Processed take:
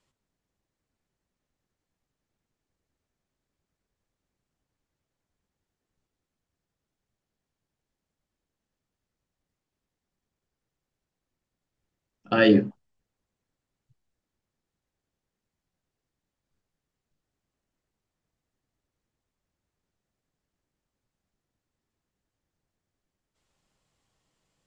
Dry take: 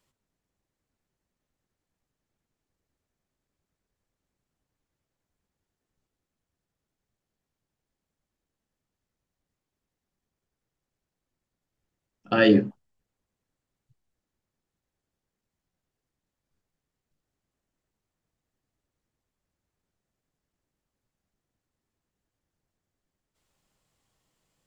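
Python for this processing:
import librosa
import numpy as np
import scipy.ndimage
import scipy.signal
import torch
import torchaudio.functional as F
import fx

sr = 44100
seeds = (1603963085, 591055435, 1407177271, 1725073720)

y = scipy.signal.sosfilt(scipy.signal.butter(2, 8800.0, 'lowpass', fs=sr, output='sos'), x)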